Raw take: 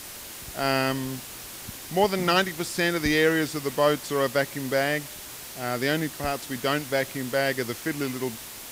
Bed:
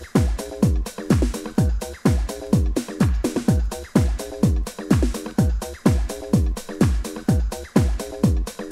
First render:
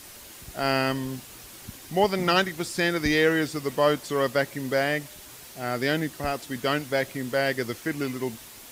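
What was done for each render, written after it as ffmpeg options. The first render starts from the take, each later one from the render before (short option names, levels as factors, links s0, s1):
-af "afftdn=nr=6:nf=-40"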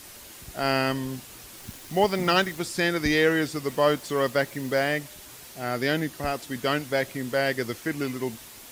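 -filter_complex "[0:a]asettb=1/sr,asplit=3[s0][s1][s2];[s0]atrim=end=1.574[s3];[s1]atrim=start=1.57:end=2.59,asetpts=PTS-STARTPTS,afade=t=in:d=0.004:c=qsin,afade=t=out:st=1.016:d=0.004:c=qsin,acrusher=bits=8:dc=4:mix=0:aa=0.000001[s4];[s2]atrim=start=2.586[s5];[s3][s4]acrossfade=d=0.004:c1=hsin:c2=qsin[s6];[s6][s5]acrossfade=d=0.004:c1=qsin:c2=hsin,asettb=1/sr,asplit=3[s7][s8][s9];[s7]atrim=end=3.704[s10];[s8]atrim=start=3.7:end=5,asetpts=PTS-STARTPTS,afade=t=in:d=0.004:c=qsin,afade=t=out:st=1.296:d=0.004:c=qsin,acrusher=bits=9:dc=4:mix=0:aa=0.000001[s11];[s9]atrim=start=4.996[s12];[s10][s11]acrossfade=d=0.004:c1=hsin:c2=qsin[s13];[s13][s12]acrossfade=d=0.004:c1=qsin:c2=hsin,asettb=1/sr,asplit=3[s14][s15][s16];[s14]atrim=end=5.644[s17];[s15]atrim=start=5.64:end=6.17,asetpts=PTS-STARTPTS,afade=t=in:d=0.004:c=qsin,afade=t=out:st=0.526:d=0.004:c=qsin,bandreject=f=7900:w=12[s18];[s16]atrim=start=6.166[s19];[s17][s18]acrossfade=d=0.004:c1=hsin:c2=qsin[s20];[s20][s19]acrossfade=d=0.004:c1=qsin:c2=hsin"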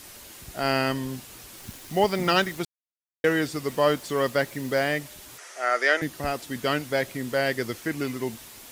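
-filter_complex "[0:a]asettb=1/sr,asplit=3[s0][s1][s2];[s0]atrim=end=5.384[s3];[s1]atrim=start=5.38:end=6.02,asetpts=PTS-STARTPTS,afade=t=in:d=0.004:c=qsin,afade=t=out:st=0.636:d=0.004:c=qsin,highpass=f=400:w=0.5412,highpass=f=400:w=1.3066,equalizer=f=620:t=q:w=4:g=5,equalizer=f=1300:t=q:w=4:g=10,equalizer=f=1900:t=q:w=4:g=9,equalizer=f=4100:t=q:w=4:g=-5,equalizer=f=6000:t=q:w=4:g=6,lowpass=f=9800:w=0.5412,lowpass=f=9800:w=1.3066[s4];[s2]atrim=start=6.016[s5];[s3][s4]acrossfade=d=0.004:c1=hsin:c2=qsin[s6];[s6][s5]acrossfade=d=0.004:c1=qsin:c2=hsin,asplit=3[s7][s8][s9];[s7]atrim=end=2.65,asetpts=PTS-STARTPTS,afade=t=out:st=2.646:d=0.004:c=hsin[s10];[s8]atrim=start=2.65:end=3.24,asetpts=PTS-STARTPTS,volume=0[s11];[s9]atrim=start=3.24,asetpts=PTS-STARTPTS,afade=t=in:d=0.004:c=hsin[s12];[s10][s11][s12]concat=n=3:v=0:a=1"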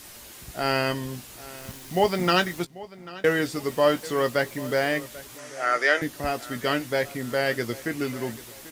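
-filter_complex "[0:a]asplit=2[s0][s1];[s1]adelay=17,volume=0.316[s2];[s0][s2]amix=inputs=2:normalize=0,asplit=2[s3][s4];[s4]adelay=790,lowpass=f=4900:p=1,volume=0.119,asplit=2[s5][s6];[s6]adelay=790,lowpass=f=4900:p=1,volume=0.41,asplit=2[s7][s8];[s8]adelay=790,lowpass=f=4900:p=1,volume=0.41[s9];[s3][s5][s7][s9]amix=inputs=4:normalize=0"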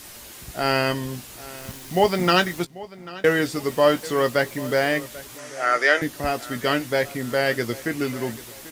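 -af "volume=1.41"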